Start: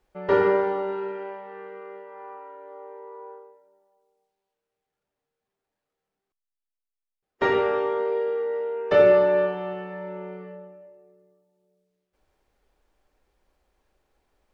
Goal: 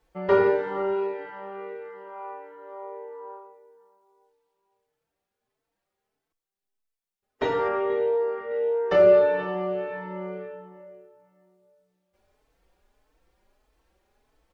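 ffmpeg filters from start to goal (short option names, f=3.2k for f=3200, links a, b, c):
-filter_complex "[0:a]asplit=2[a][b];[b]acompressor=threshold=-30dB:ratio=6,volume=-2dB[c];[a][c]amix=inputs=2:normalize=0,asettb=1/sr,asplit=3[d][e][f];[d]atrim=end=7.684[g];[e]atrim=start=7.68:end=8.51,asetpts=PTS-STARTPTS,afade=t=in:d=0.004:c=qsin,afade=t=out:st=0.826:d=0.004:c=qsin,highshelf=f=4k:g=-11.5[h];[f]atrim=start=8.506[i];[g][h]acrossfade=d=0.004:c1=hsin:c2=qsin[j];[j][i]acrossfade=d=0.004:c1=qsin:c2=hsin,asplit=2[k][l];[l]adelay=480,lowpass=f=3.3k:p=1,volume=-17dB,asplit=2[m][n];[n]adelay=480,lowpass=f=3.3k:p=1,volume=0.32,asplit=2[o][p];[p]adelay=480,lowpass=f=3.3k:p=1,volume=0.32[q];[k][m][o][q]amix=inputs=4:normalize=0,asplit=2[r][s];[s]adelay=4.1,afreqshift=1.6[t];[r][t]amix=inputs=2:normalize=1"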